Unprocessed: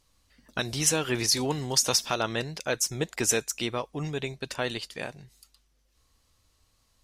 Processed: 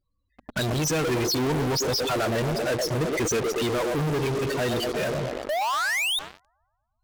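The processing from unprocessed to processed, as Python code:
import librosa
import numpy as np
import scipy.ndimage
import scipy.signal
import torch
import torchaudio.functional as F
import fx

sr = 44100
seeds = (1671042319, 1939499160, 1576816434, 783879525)

p1 = scipy.signal.sosfilt(scipy.signal.butter(6, 9500.0, 'lowpass', fs=sr, output='sos'), x)
p2 = fx.peak_eq(p1, sr, hz=7000.0, db=-9.0, octaves=0.83)
p3 = fx.spec_paint(p2, sr, seeds[0], shape='rise', start_s=5.49, length_s=0.7, low_hz=570.0, high_hz=3800.0, level_db=-35.0)
p4 = p3 + fx.echo_wet_bandpass(p3, sr, ms=118, feedback_pct=66, hz=490.0, wet_db=-7.5, dry=0)
p5 = fx.spec_topn(p4, sr, count=16)
p6 = fx.fuzz(p5, sr, gain_db=55.0, gate_db=-52.0)
p7 = p5 + F.gain(torch.from_numpy(p6), -5.5).numpy()
y = F.gain(torch.from_numpy(p7), -7.0).numpy()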